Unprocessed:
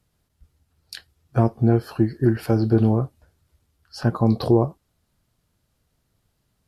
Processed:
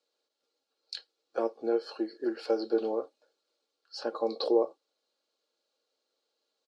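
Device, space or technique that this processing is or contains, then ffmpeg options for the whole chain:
phone speaker on a table: -af "highpass=f=390:w=0.5412,highpass=f=390:w=1.3066,equalizer=f=450:t=q:w=4:g=10,equalizer=f=970:t=q:w=4:g=-4,equalizer=f=1.9k:t=q:w=4:g=-8,equalizer=f=4.2k:t=q:w=4:g=9,lowpass=f=7.2k:w=0.5412,lowpass=f=7.2k:w=1.3066,aecho=1:1:3.6:0.47,volume=-7.5dB"

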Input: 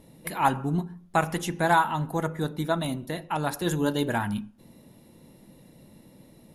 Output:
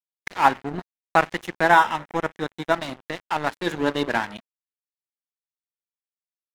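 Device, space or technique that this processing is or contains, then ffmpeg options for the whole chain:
pocket radio on a weak battery: -filter_complex "[0:a]highpass=270,lowpass=4.1k,aeval=exprs='sgn(val(0))*max(abs(val(0))-0.0178,0)':c=same,equalizer=f=1.9k:t=o:w=0.53:g=4,asettb=1/sr,asplit=3[a][b][c];[a]atrim=end=1.684[d];[b]atrim=start=1.68:end=2.74,asetpts=PTS-STARTPTS,afade=t=in:d=0.004:c=qsin,afade=t=out:st=1.056:d=0.004:c=qsin,bandreject=f=4.5k:w=5.2[e];[c]atrim=start=2.736[f];[d][e]acrossfade=d=0.004:c1=hsin:c2=qsin[g];[g][f]acrossfade=d=0.004:c1=qsin:c2=hsin,volume=6.5dB"

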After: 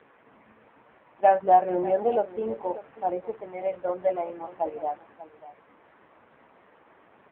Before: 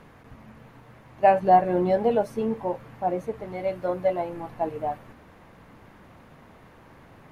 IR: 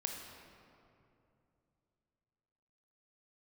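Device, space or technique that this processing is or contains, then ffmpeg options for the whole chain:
satellite phone: -filter_complex "[0:a]asplit=3[a][b][c];[a]afade=t=out:st=1.33:d=0.02[d];[b]bass=f=250:g=0,treble=f=4k:g=-7,afade=t=in:st=1.33:d=0.02,afade=t=out:st=1.91:d=0.02[e];[c]afade=t=in:st=1.91:d=0.02[f];[d][e][f]amix=inputs=3:normalize=0,highpass=330,lowpass=3.3k,aecho=1:1:591:0.158" -ar 8000 -c:a libopencore_amrnb -b:a 5900

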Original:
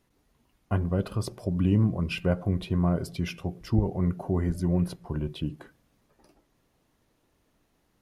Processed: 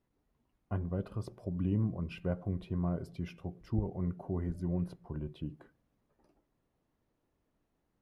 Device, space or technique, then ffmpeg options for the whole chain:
through cloth: -af "highshelf=f=2.3k:g=-11,volume=-8.5dB"

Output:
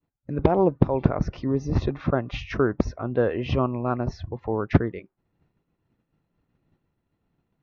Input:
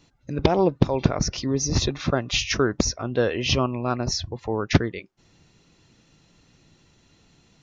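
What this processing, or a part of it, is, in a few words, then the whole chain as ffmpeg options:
hearing-loss simulation: -af "lowpass=1.5k,agate=range=-33dB:threshold=-49dB:ratio=3:detection=peak"

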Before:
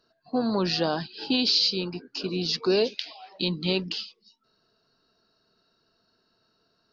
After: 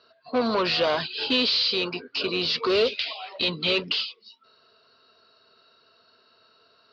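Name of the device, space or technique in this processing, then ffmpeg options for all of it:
overdrive pedal into a guitar cabinet: -filter_complex "[0:a]asplit=2[a][b];[b]highpass=f=720:p=1,volume=22dB,asoftclip=type=tanh:threshold=-10.5dB[c];[a][c]amix=inputs=2:normalize=0,lowpass=f=3.9k:p=1,volume=-6dB,highpass=86,equalizer=f=90:t=q:w=4:g=8,equalizer=f=130:t=q:w=4:g=-4,equalizer=f=190:t=q:w=4:g=-10,equalizer=f=320:t=q:w=4:g=-10,equalizer=f=810:t=q:w=4:g=-10,equalizer=f=1.7k:t=q:w=4:g=-7,lowpass=f=4.2k:w=0.5412,lowpass=f=4.2k:w=1.3066"

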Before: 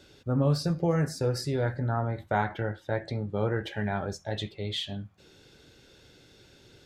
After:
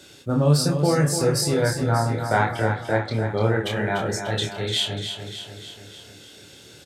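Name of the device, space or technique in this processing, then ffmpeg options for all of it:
budget condenser microphone: -filter_complex "[0:a]asettb=1/sr,asplit=3[a][b][c];[a]atrim=end=2.344[d];[b]atrim=start=2.34:end=3.17,asetpts=PTS-STARTPTS,afade=t=in:d=0.004:c=qsin,afade=t=out:st=0.826:d=0.004:c=qsin,lowpass=5.5k[e];[c]atrim=start=3.166[f];[d][e]acrossfade=d=0.004:c1=hsin:c2=qsin[g];[g][f]acrossfade=d=0.004:c1=qsin:c2=hsin,highpass=90,equalizer=f=5.3k:w=0.35:g=5.5,highshelf=f=6.8k:t=q:w=1.5:g=6,asplit=2[h][i];[i]adelay=27,volume=-3.5dB[j];[h][j]amix=inputs=2:normalize=0,aecho=1:1:295|590|885|1180|1475|1770|2065:0.398|0.231|0.134|0.0777|0.0451|0.0261|0.0152,volume=4.5dB"

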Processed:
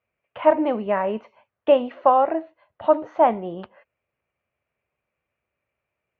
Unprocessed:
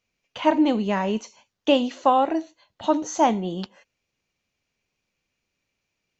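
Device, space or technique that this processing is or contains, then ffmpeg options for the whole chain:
bass cabinet: -af "highpass=64,equalizer=f=65:t=q:w=4:g=4,equalizer=f=190:t=q:w=4:g=-7,equalizer=f=280:t=q:w=4:g=-7,equalizer=f=610:t=q:w=4:g=7,equalizer=f=1.2k:t=q:w=4:g=4,lowpass=f=2.3k:w=0.5412,lowpass=f=2.3k:w=1.3066"

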